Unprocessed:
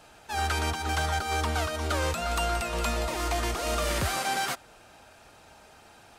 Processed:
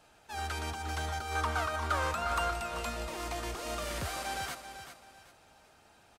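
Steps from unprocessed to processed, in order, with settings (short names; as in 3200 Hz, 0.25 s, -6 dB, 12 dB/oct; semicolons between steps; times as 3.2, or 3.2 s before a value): 1.35–2.51 bell 1200 Hz +10.5 dB 1.3 oct; feedback echo 0.387 s, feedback 30%, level -10 dB; gain -8.5 dB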